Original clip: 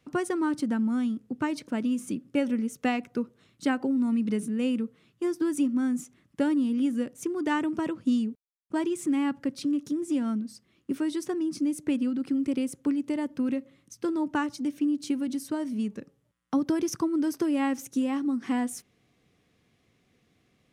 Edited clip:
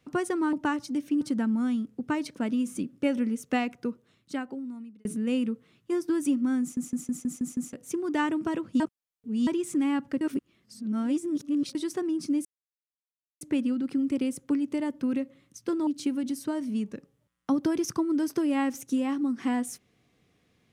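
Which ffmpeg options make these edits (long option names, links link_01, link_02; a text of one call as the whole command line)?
ffmpeg -i in.wav -filter_complex "[0:a]asplit=17[link_01][link_02][link_03][link_04][link_05][link_06][link_07][link_08][link_09][link_10][link_11][link_12][link_13][link_14][link_15][link_16][link_17];[link_01]atrim=end=0.532[link_18];[link_02]atrim=start=14.228:end=14.912[link_19];[link_03]atrim=start=0.528:end=4.37,asetpts=PTS-STARTPTS,afade=type=out:start_time=2.382:duration=1.46[link_20];[link_04]atrim=start=4.37:end=6.092,asetpts=PTS-STARTPTS,afade=type=in:duration=0.004:curve=hsin[link_21];[link_05]atrim=start=5.928:end=6.092[link_22];[link_06]atrim=start=5.928:end=6.092[link_23];[link_07]atrim=start=5.928:end=6.092[link_24];[link_08]atrim=start=5.928:end=6.092[link_25];[link_09]atrim=start=5.928:end=6.092[link_26];[link_10]atrim=start=5.928:end=6.092[link_27];[link_11]atrim=start=7.048:end=8.122[link_28];[link_12]atrim=start=8.118:end=8.792,asetpts=PTS-STARTPTS,areverse[link_29];[link_13]atrim=start=8.788:end=9.532[link_30];[link_14]atrim=start=9.528:end=11.072,asetpts=PTS-STARTPTS,areverse[link_31];[link_15]atrim=start=11.068:end=11.77,asetpts=PTS-STARTPTS,afade=type=out:start_time=0.698:duration=0.004:curve=hsin,apad=pad_dur=0.96[link_32];[link_16]atrim=start=11.77:end=14.232,asetpts=PTS-STARTPTS,afade=type=in:duration=0.004:curve=hsin[link_33];[link_17]atrim=start=14.908[link_34];[link_18][link_19]acrossfade=duration=0.004:curve1=hsin:curve2=hsin[link_35];[link_20][link_21]concat=n=2:v=0:a=1[link_36];[link_35][link_36]acrossfade=duration=0.004:curve1=hsin:curve2=hsin[link_37];[link_37][link_22]acrossfade=duration=0.004:curve1=hsin:curve2=hsin[link_38];[link_38][link_23]acrossfade=duration=0.004:curve1=hsin:curve2=hsin[link_39];[link_39][link_24]acrossfade=duration=0.004:curve1=hsin:curve2=hsin[link_40];[link_40][link_25]acrossfade=duration=0.004:curve1=hsin:curve2=hsin[link_41];[link_41][link_26]acrossfade=duration=0.004:curve1=hsin:curve2=hsin[link_42];[link_42][link_27]acrossfade=duration=0.004:curve1=hsin:curve2=hsin[link_43];[link_43][link_28]acrossfade=duration=0.004:curve1=hsin:curve2=hsin[link_44];[link_44][link_29]acrossfade=duration=0.004:curve1=hsin:curve2=hsin[link_45];[link_45][link_30]acrossfade=duration=0.004:curve1=hsin:curve2=hsin[link_46];[link_46][link_31]acrossfade=duration=0.004:curve1=hsin:curve2=hsin[link_47];[link_32][link_33]concat=n=2:v=0:a=1[link_48];[link_47][link_48]acrossfade=duration=0.004:curve1=hsin:curve2=hsin[link_49];[link_49][link_34]acrossfade=duration=0.004:curve1=hsin:curve2=hsin" out.wav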